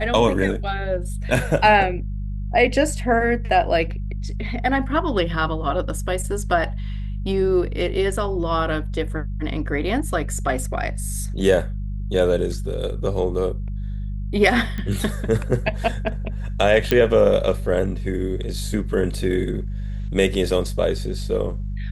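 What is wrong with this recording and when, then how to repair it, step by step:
hum 50 Hz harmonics 4 -27 dBFS
14.78 pop -17 dBFS
16.91 pop -5 dBFS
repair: de-click; de-hum 50 Hz, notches 4

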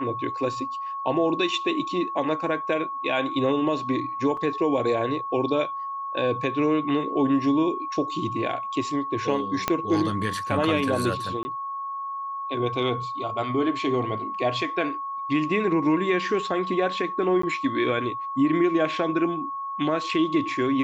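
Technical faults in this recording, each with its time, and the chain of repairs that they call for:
tone 1100 Hz -29 dBFS
4.37 gap 3.6 ms
9.68 pop -7 dBFS
11.43–11.45 gap 20 ms
17.42–17.43 gap 14 ms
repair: de-click; notch 1100 Hz, Q 30; interpolate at 4.37, 3.6 ms; interpolate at 11.43, 20 ms; interpolate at 17.42, 14 ms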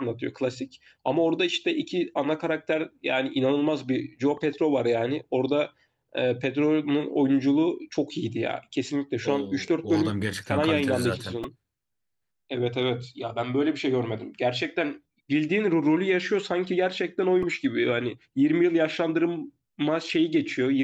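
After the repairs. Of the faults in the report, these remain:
9.68 pop

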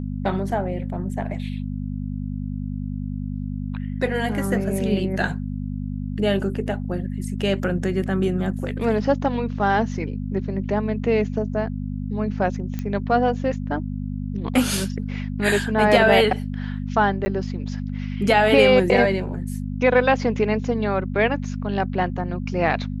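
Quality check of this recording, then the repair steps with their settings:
hum 50 Hz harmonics 5 -28 dBFS
12.79 pop -16 dBFS
17.25–17.26 gap 10 ms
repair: de-click; de-hum 50 Hz, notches 5; interpolate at 17.25, 10 ms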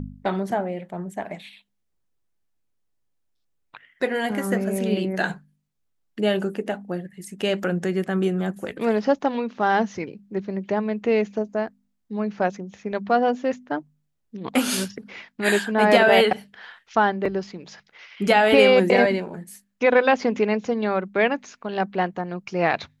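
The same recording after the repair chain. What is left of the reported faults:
none

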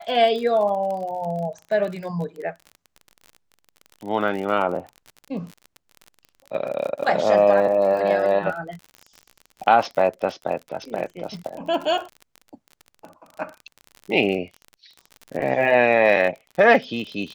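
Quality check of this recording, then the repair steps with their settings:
crackle 41/s -30 dBFS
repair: de-click

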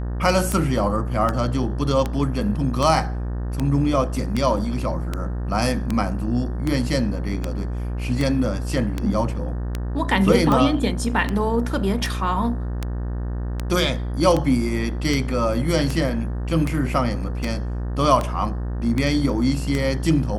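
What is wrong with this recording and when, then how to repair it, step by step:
buzz 60 Hz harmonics 31 -26 dBFS
tick 78 rpm -10 dBFS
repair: de-click; de-hum 60 Hz, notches 31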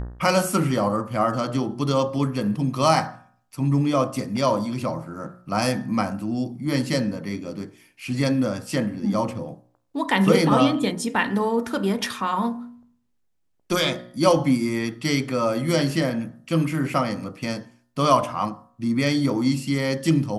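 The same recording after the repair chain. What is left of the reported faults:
none

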